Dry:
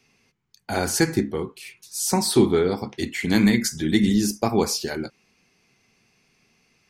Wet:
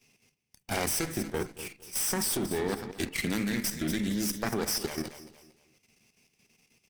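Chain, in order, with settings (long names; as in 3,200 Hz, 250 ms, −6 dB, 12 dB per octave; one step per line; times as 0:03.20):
lower of the sound and its delayed copy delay 0.36 ms
downward compressor 3 to 1, threshold −20 dBFS, peak gain reduction 7 dB
high-shelf EQ 6,500 Hz +10 dB
repeating echo 233 ms, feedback 32%, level −13 dB
dynamic equaliser 1,600 Hz, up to +5 dB, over −47 dBFS, Q 1.7
output level in coarse steps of 9 dB
level −2.5 dB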